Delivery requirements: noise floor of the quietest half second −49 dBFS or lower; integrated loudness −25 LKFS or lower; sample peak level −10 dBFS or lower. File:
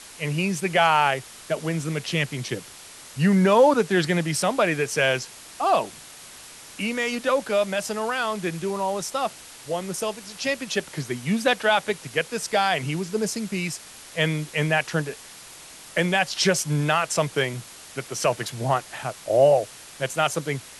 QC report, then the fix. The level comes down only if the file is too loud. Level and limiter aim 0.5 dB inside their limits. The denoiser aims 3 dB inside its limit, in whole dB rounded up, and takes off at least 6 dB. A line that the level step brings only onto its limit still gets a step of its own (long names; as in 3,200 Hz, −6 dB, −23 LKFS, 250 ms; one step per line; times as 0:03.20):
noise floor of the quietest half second −44 dBFS: out of spec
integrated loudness −24.0 LKFS: out of spec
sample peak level −7.5 dBFS: out of spec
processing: broadband denoise 7 dB, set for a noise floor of −44 dBFS
level −1.5 dB
brickwall limiter −10.5 dBFS